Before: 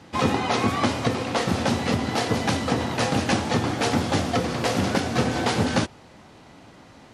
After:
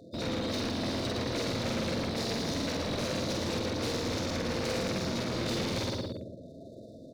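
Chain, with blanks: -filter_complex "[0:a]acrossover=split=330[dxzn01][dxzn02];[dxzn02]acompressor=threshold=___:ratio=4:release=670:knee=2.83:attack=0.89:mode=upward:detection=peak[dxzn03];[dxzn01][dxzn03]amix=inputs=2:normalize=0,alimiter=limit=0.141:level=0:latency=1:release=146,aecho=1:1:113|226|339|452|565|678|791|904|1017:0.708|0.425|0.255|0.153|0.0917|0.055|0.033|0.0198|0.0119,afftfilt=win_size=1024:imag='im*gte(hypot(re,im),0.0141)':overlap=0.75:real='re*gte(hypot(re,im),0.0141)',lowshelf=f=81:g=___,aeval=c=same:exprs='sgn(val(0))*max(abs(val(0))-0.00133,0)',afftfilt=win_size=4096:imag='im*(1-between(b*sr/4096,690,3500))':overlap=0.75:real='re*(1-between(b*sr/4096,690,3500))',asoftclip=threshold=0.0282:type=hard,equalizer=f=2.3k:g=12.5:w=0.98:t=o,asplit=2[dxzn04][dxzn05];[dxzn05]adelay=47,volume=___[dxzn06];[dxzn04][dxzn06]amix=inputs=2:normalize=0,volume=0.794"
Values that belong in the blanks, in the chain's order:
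0.0158, -4, 0.75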